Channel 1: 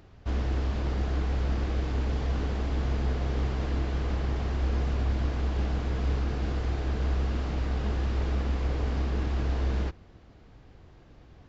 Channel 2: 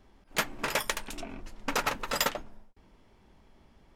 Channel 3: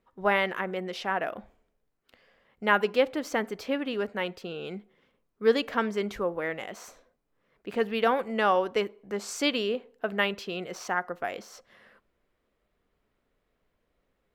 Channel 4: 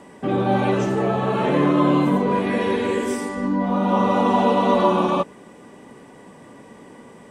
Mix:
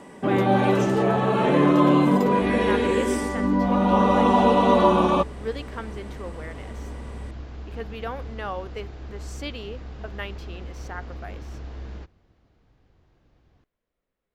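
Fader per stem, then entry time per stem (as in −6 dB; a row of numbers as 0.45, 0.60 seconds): −9.0, −17.5, −8.5, 0.0 decibels; 2.15, 0.00, 0.00, 0.00 seconds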